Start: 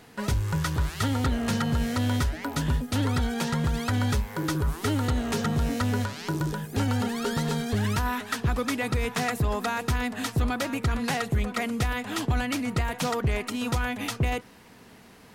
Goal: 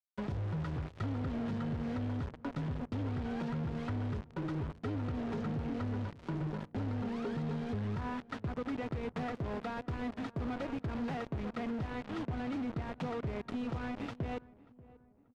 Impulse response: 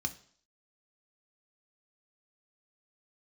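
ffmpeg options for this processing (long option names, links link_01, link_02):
-filter_complex "[0:a]highpass=frequency=83:width=0.5412,highpass=frequency=83:width=1.3066,acrusher=bits=4:mix=0:aa=0.000001,tiltshelf=frequency=970:gain=7,asoftclip=type=tanh:threshold=-19dB,lowpass=3400,asettb=1/sr,asplit=3[link_01][link_02][link_03];[link_01]atrim=end=9.124[link_04];[link_02]atrim=start=9.12:end=11.69,asetpts=PTS-STARTPTS,afade=type=in:duration=0.004:curve=qsin,afade=type=out:start_time=2.566:duration=0.004:curve=qsin,asoftclip=type=hard:threshold=-22dB[link_05];[link_03]atrim=start=11.686[link_06];[link_04][link_05]acrossfade=duration=0.004:curve1=hsin:curve2=qsin[link_07];[link_07][link_06]acrossfade=duration=0.004:curve1=qsin:curve2=hsin,acompressor=threshold=-25dB:ratio=6,asplit=2[link_08][link_09];[link_09]adelay=586,lowpass=frequency=1200:poles=1,volume=-20dB,asplit=2[link_10][link_11];[link_11]adelay=586,lowpass=frequency=1200:poles=1,volume=0.5,asplit=2[link_12][link_13];[link_13]adelay=586,lowpass=frequency=1200:poles=1,volume=0.5,asplit=2[link_14][link_15];[link_15]adelay=586,lowpass=frequency=1200:poles=1,volume=0.5[link_16];[link_08][link_10][link_12][link_14][link_16]amix=inputs=5:normalize=0,volume=-8.5dB"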